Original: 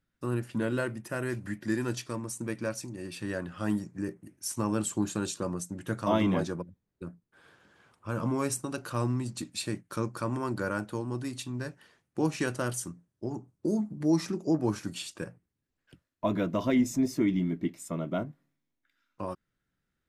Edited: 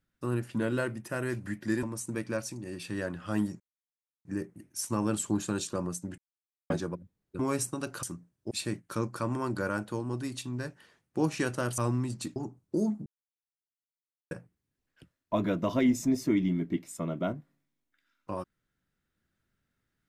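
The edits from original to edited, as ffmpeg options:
ffmpeg -i in.wav -filter_complex "[0:a]asplit=12[link_01][link_02][link_03][link_04][link_05][link_06][link_07][link_08][link_09][link_10][link_11][link_12];[link_01]atrim=end=1.832[link_13];[link_02]atrim=start=2.148:end=3.92,asetpts=PTS-STARTPTS,afade=type=out:start_time=1.768:duration=0.004:curve=hsin,apad=pad_dur=0.65[link_14];[link_03]atrim=start=3.92:end=5.85,asetpts=PTS-STARTPTS,afade=type=in:duration=0.004:curve=hsin,afade=type=out:start_time=1.926:duration=0.004:curve=hsin[link_15];[link_04]atrim=start=5.85:end=6.37,asetpts=PTS-STARTPTS,volume=0[link_16];[link_05]atrim=start=6.37:end=7.062,asetpts=PTS-STARTPTS,afade=type=in:duration=0.004:curve=hsin[link_17];[link_06]atrim=start=8.298:end=8.942[link_18];[link_07]atrim=start=12.788:end=13.272[link_19];[link_08]atrim=start=9.518:end=12.792[link_20];[link_09]atrim=start=8.938:end=9.522[link_21];[link_10]atrim=start=13.268:end=13.97,asetpts=PTS-STARTPTS,afade=type=out:start_time=0.698:duration=0.004:curve=hsin[link_22];[link_11]atrim=start=13.97:end=15.22,asetpts=PTS-STARTPTS,volume=0[link_23];[link_12]atrim=start=15.22,asetpts=PTS-STARTPTS,afade=type=in:duration=0.004:curve=hsin[link_24];[link_14][link_15][link_16][link_17]concat=n=4:v=0:a=1[link_25];[link_13][link_25]acrossfade=duration=0.004:curve1=hsin:curve2=hsin[link_26];[link_26][link_18]acrossfade=duration=0.004:curve1=hsin:curve2=hsin[link_27];[link_27][link_19]acrossfade=duration=0.004:curve1=hsin:curve2=hsin[link_28];[link_28][link_20]acrossfade=duration=0.004:curve1=hsin:curve2=hsin[link_29];[link_29][link_21]acrossfade=duration=0.004:curve1=hsin:curve2=hsin[link_30];[link_22][link_23][link_24]concat=n=3:v=0:a=1[link_31];[link_30][link_31]acrossfade=duration=0.004:curve1=hsin:curve2=hsin" out.wav

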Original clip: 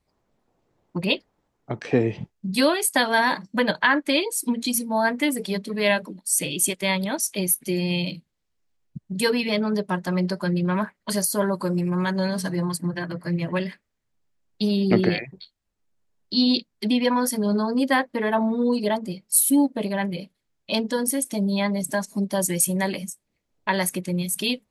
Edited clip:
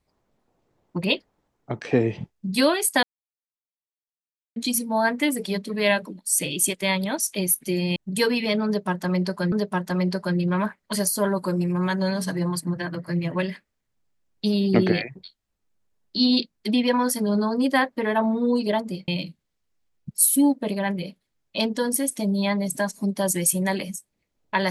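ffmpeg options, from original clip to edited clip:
ffmpeg -i in.wav -filter_complex "[0:a]asplit=7[link_01][link_02][link_03][link_04][link_05][link_06][link_07];[link_01]atrim=end=3.03,asetpts=PTS-STARTPTS,afade=type=out:start_time=3.026:duration=0.004:curve=hsin[link_08];[link_02]atrim=start=3.03:end=4.56,asetpts=PTS-STARTPTS,volume=0[link_09];[link_03]atrim=start=4.56:end=7.962,asetpts=PTS-STARTPTS,afade=type=in:duration=0.004:curve=hsin[link_10];[link_04]atrim=start=8.988:end=10.552[link_11];[link_05]atrim=start=9.688:end=19.252[link_12];[link_06]atrim=start=7.958:end=8.992[link_13];[link_07]atrim=start=19.248[link_14];[link_08][link_09][link_10]concat=n=3:v=0:a=1[link_15];[link_15][link_11]acrossfade=duration=0.004:curve1=hsin:curve2=hsin[link_16];[link_16][link_12]acrossfade=duration=0.004:curve1=hsin:curve2=hsin[link_17];[link_17][link_13]acrossfade=duration=0.004:curve1=hsin:curve2=hsin[link_18];[link_18][link_14]acrossfade=duration=0.004:curve1=hsin:curve2=hsin" out.wav

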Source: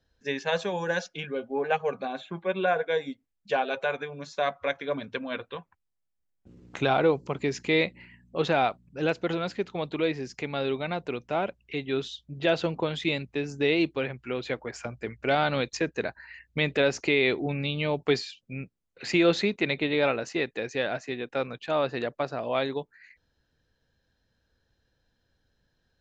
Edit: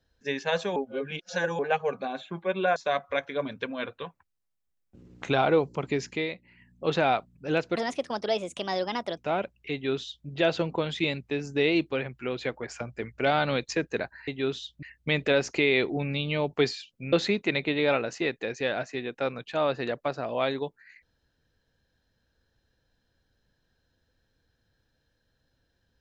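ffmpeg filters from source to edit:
ffmpeg -i in.wav -filter_complex "[0:a]asplit=11[link_01][link_02][link_03][link_04][link_05][link_06][link_07][link_08][link_09][link_10][link_11];[link_01]atrim=end=0.762[link_12];[link_02]atrim=start=0.758:end=1.592,asetpts=PTS-STARTPTS,areverse[link_13];[link_03]atrim=start=1.588:end=2.762[link_14];[link_04]atrim=start=4.278:end=7.8,asetpts=PTS-STARTPTS,afade=type=out:start_time=3.142:duration=0.38:curve=qsin:silence=0.316228[link_15];[link_05]atrim=start=7.8:end=8.02,asetpts=PTS-STARTPTS,volume=-10dB[link_16];[link_06]atrim=start=8.02:end=9.284,asetpts=PTS-STARTPTS,afade=type=in:duration=0.38:curve=qsin:silence=0.316228[link_17];[link_07]atrim=start=9.28:end=11.22,asetpts=PTS-STARTPTS,asetrate=60417,aresample=44100,atrim=end_sample=62448,asetpts=PTS-STARTPTS[link_18];[link_08]atrim=start=11.216:end=16.322[link_19];[link_09]atrim=start=11.768:end=12.322[link_20];[link_10]atrim=start=16.318:end=18.622[link_21];[link_11]atrim=start=19.268[link_22];[link_12][link_13]acrossfade=duration=0.004:curve1=hsin:curve2=hsin[link_23];[link_23][link_14]acrossfade=duration=0.004:curve1=hsin:curve2=hsin[link_24];[link_15][link_16][link_17]concat=n=3:v=0:a=1[link_25];[link_24][link_25]acrossfade=duration=0.004:curve1=hsin:curve2=hsin[link_26];[link_26][link_18]acrossfade=duration=0.004:curve1=hsin:curve2=hsin[link_27];[link_27][link_19]acrossfade=duration=0.004:curve1=hsin:curve2=hsin[link_28];[link_28][link_20]acrossfade=duration=0.004:curve1=hsin:curve2=hsin[link_29];[link_29][link_21]acrossfade=duration=0.004:curve1=hsin:curve2=hsin[link_30];[link_30][link_22]acrossfade=duration=0.004:curve1=hsin:curve2=hsin" out.wav

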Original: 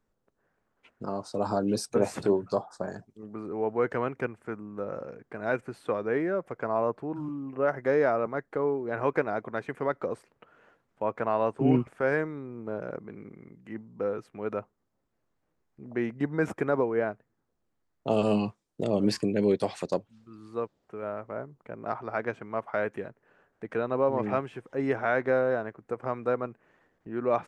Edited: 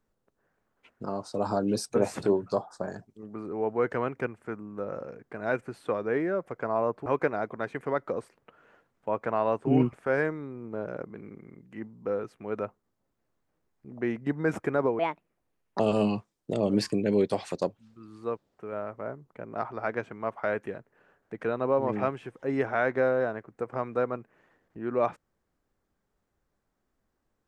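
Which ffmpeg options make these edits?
ffmpeg -i in.wav -filter_complex "[0:a]asplit=4[link_01][link_02][link_03][link_04];[link_01]atrim=end=7.062[link_05];[link_02]atrim=start=8.998:end=16.934[link_06];[link_03]atrim=start=16.93:end=18.1,asetpts=PTS-STARTPTS,asetrate=63945,aresample=44100,atrim=end_sample=35584,asetpts=PTS-STARTPTS[link_07];[link_04]atrim=start=18.096[link_08];[link_05][link_06]acrossfade=duration=0.004:curve1=hsin:curve2=hsin[link_09];[link_09][link_07]acrossfade=duration=0.004:curve1=hsin:curve2=hsin[link_10];[link_10][link_08]acrossfade=duration=0.004:curve1=hsin:curve2=hsin" out.wav

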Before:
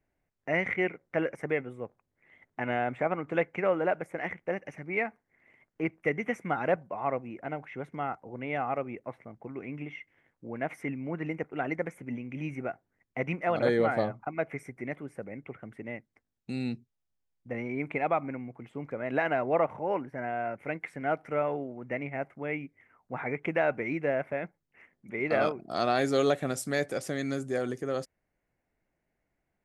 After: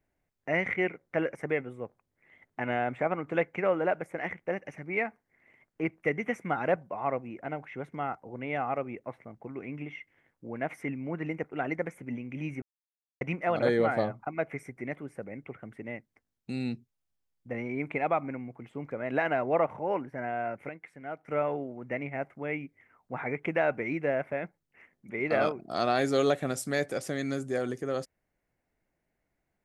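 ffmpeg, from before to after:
ffmpeg -i in.wav -filter_complex "[0:a]asplit=5[link_01][link_02][link_03][link_04][link_05];[link_01]atrim=end=12.62,asetpts=PTS-STARTPTS,afade=type=out:start_time=12.616:duration=0.004:curve=hsin[link_06];[link_02]atrim=start=12.62:end=13.21,asetpts=PTS-STARTPTS,volume=0[link_07];[link_03]atrim=start=13.21:end=20.692,asetpts=PTS-STARTPTS,afade=type=in:duration=0.004:curve=hsin[link_08];[link_04]atrim=start=20.688:end=21.282,asetpts=PTS-STARTPTS,volume=-9.5dB[link_09];[link_05]atrim=start=21.278[link_10];[link_06][link_07][link_08]concat=n=3:v=0:a=1[link_11];[link_11][link_09]acrossfade=duration=0.004:curve1=hsin:curve2=hsin[link_12];[link_12][link_10]acrossfade=duration=0.004:curve1=hsin:curve2=hsin" out.wav

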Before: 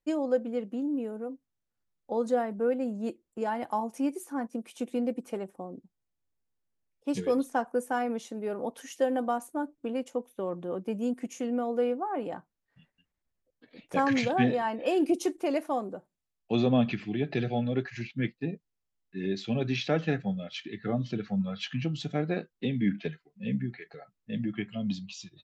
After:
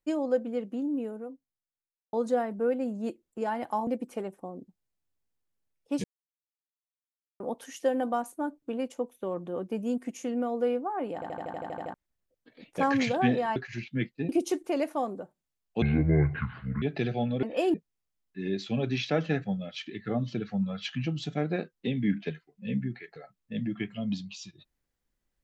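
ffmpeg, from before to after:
ffmpeg -i in.wav -filter_complex "[0:a]asplit=21[link_01][link_02][link_03][link_04][link_05][link_06][link_07][link_08][link_09][link_10][link_11][link_12][link_13][link_14][link_15][link_16][link_17][link_18][link_19][link_20][link_21];[link_01]atrim=end=2.13,asetpts=PTS-STARTPTS,afade=type=out:start_time=1.07:duration=1.06:curve=qua[link_22];[link_02]atrim=start=2.13:end=3.872,asetpts=PTS-STARTPTS,afade=type=in:duration=0.004:curve=hsin[link_23];[link_03]atrim=start=5.028:end=7.2,asetpts=PTS-STARTPTS,afade=type=out:start_time=2.168:duration=0.004:curve=hsin[link_24];[link_04]atrim=start=7.2:end=8.56,asetpts=PTS-STARTPTS,volume=0[link_25];[link_05]atrim=start=8.56:end=12.382,asetpts=PTS-STARTPTS,afade=type=in:duration=0.004:curve=hsin[link_26];[link_06]atrim=start=12.298:end=12.382[link_27];[link_07]atrim=start=12.298:end=12.382[link_28];[link_08]atrim=start=12.298:end=12.382[link_29];[link_09]atrim=start=12.298:end=12.382[link_30];[link_10]atrim=start=12.298:end=12.382[link_31];[link_11]atrim=start=12.298:end=12.382[link_32];[link_12]atrim=start=12.298:end=12.382[link_33];[link_13]atrim=start=12.298:end=12.382[link_34];[link_14]atrim=start=12.298:end=12.382[link_35];[link_15]atrim=start=13.098:end=14.722[link_36];[link_16]atrim=start=17.788:end=18.522[link_37];[link_17]atrim=start=15.028:end=16.564[link_38];[link_18]atrim=start=16.56:end=17.18,asetpts=PTS-STARTPTS,asetrate=27342,aresample=44100[link_39];[link_19]atrim=start=17.176:end=17.792[link_40];[link_20]atrim=start=14.718:end=15.032[link_41];[link_21]atrim=start=18.518[link_42];[link_22][link_23]concat=n=2:v=0:a=1[link_43];[link_24][link_25][link_26]concat=n=3:v=0:a=1[link_44];[link_43][link_44]acrossfade=duration=0.004:curve1=hsin:curve2=hsin[link_45];[link_45][link_27]acrossfade=duration=0.004:curve1=hsin:curve2=hsin[link_46];[link_46][link_28]acrossfade=duration=0.004:curve1=hsin:curve2=hsin[link_47];[link_47][link_29]acrossfade=duration=0.004:curve1=hsin:curve2=hsin[link_48];[link_48][link_30]acrossfade=duration=0.004:curve1=hsin:curve2=hsin[link_49];[link_49][link_31]acrossfade=duration=0.004:curve1=hsin:curve2=hsin[link_50];[link_50][link_32]acrossfade=duration=0.004:curve1=hsin:curve2=hsin[link_51];[link_51][link_33]acrossfade=duration=0.004:curve1=hsin:curve2=hsin[link_52];[link_52][link_34]acrossfade=duration=0.004:curve1=hsin:curve2=hsin[link_53];[link_53][link_35]acrossfade=duration=0.004:curve1=hsin:curve2=hsin[link_54];[link_54][link_36]acrossfade=duration=0.004:curve1=hsin:curve2=hsin[link_55];[link_55][link_37]acrossfade=duration=0.004:curve1=hsin:curve2=hsin[link_56];[link_56][link_38]acrossfade=duration=0.004:curve1=hsin:curve2=hsin[link_57];[link_57][link_39]acrossfade=duration=0.004:curve1=hsin:curve2=hsin[link_58];[link_58][link_40]acrossfade=duration=0.004:curve1=hsin:curve2=hsin[link_59];[link_59][link_41]acrossfade=duration=0.004:curve1=hsin:curve2=hsin[link_60];[link_60][link_42]acrossfade=duration=0.004:curve1=hsin:curve2=hsin" out.wav

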